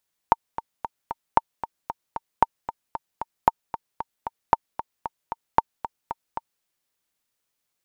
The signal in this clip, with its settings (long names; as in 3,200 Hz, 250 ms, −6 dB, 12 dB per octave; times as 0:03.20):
click track 228 BPM, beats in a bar 4, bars 6, 914 Hz, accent 13.5 dB −1.5 dBFS